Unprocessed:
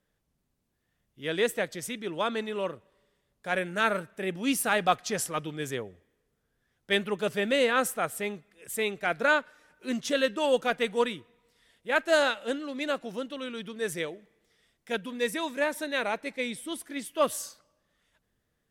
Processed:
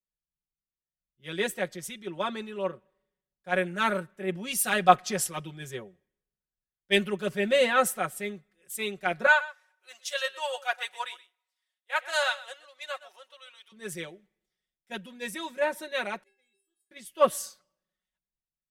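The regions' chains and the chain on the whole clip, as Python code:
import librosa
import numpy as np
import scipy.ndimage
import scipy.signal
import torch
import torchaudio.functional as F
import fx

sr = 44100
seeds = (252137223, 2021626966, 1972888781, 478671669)

y = fx.chain(x, sr, fx.highpass(hz=680.0, slope=24),
    fx.echo_single(ms=125, db=-15.0), at=(9.26, 13.72))
y = fx.chain(y, sr, fx.stiff_resonator(f0_hz=390.0, decay_s=0.72, stiffness=0.008),
    fx.room_flutter(wall_m=9.5, rt60_s=0.23), at=(16.23, 16.91))
y = y + 0.82 * np.pad(y, (int(5.4 * sr / 1000.0), 0))[:len(y)]
y = fx.band_widen(y, sr, depth_pct=70)
y = F.gain(torch.from_numpy(y), -3.5).numpy()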